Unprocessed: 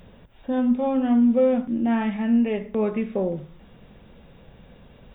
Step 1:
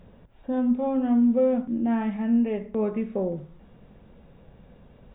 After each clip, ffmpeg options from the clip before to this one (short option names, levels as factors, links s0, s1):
-af "highshelf=f=2200:g=-11,volume=0.794"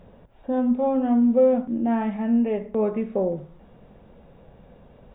-af "equalizer=f=660:t=o:w=1.6:g=5.5"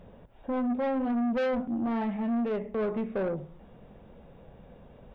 -af "asoftclip=type=tanh:threshold=0.0631,volume=0.841"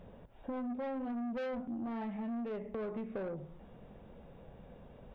-af "acompressor=threshold=0.0178:ratio=6,volume=0.75"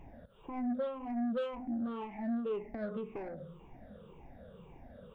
-af "afftfilt=real='re*pow(10,18/40*sin(2*PI*(0.71*log(max(b,1)*sr/1024/100)/log(2)-(-1.9)*(pts-256)/sr)))':imag='im*pow(10,18/40*sin(2*PI*(0.71*log(max(b,1)*sr/1024/100)/log(2)-(-1.9)*(pts-256)/sr)))':win_size=1024:overlap=0.75,volume=0.75"